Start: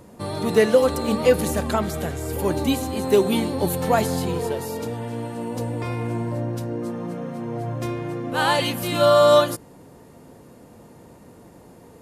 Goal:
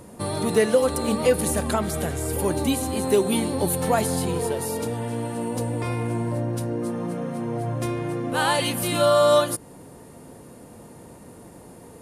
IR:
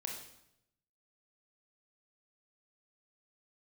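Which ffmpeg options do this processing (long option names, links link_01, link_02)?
-filter_complex "[0:a]equalizer=frequency=9500:width=3.2:gain=10.5,asplit=2[link_01][link_02];[link_02]acompressor=threshold=-26dB:ratio=6,volume=2dB[link_03];[link_01][link_03]amix=inputs=2:normalize=0,volume=-5dB"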